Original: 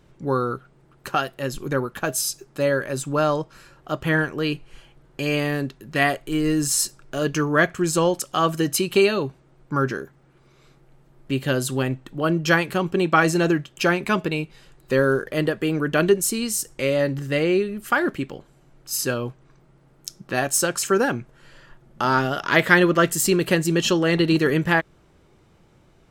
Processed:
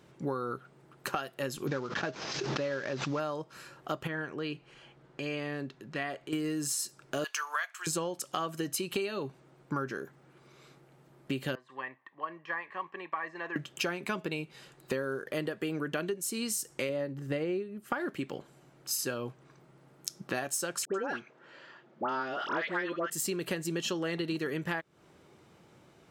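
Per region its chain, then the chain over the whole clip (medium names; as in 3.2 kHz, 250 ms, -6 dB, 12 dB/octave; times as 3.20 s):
1.67–3.20 s: CVSD coder 32 kbps + swell ahead of each attack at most 55 dB/s
4.07–6.33 s: distance through air 70 m + compression 1.5:1, threshold -47 dBFS
7.24–7.87 s: high-pass 870 Hz 24 dB/octave + tilt EQ +1.5 dB/octave
11.55–13.56 s: de-esser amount 85% + two resonant band-passes 1.4 kHz, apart 0.74 oct + distance through air 52 m
16.89–18.00 s: tilt shelf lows +4.5 dB, about 1.3 kHz + upward expansion, over -36 dBFS
20.85–23.10 s: high-pass 260 Hz + distance through air 140 m + phase dispersion highs, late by 92 ms, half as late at 1.3 kHz
whole clip: high-pass 99 Hz; bass shelf 170 Hz -5.5 dB; compression 12:1, threshold -30 dBFS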